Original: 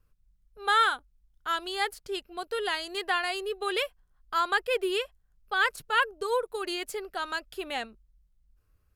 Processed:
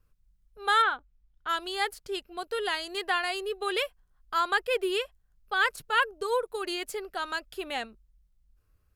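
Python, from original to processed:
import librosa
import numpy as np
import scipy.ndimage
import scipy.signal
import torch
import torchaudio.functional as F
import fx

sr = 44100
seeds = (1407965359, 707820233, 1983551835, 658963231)

y = fx.lowpass(x, sr, hz=fx.line((0.81, 2400.0), (1.48, 4200.0)), slope=12, at=(0.81, 1.48), fade=0.02)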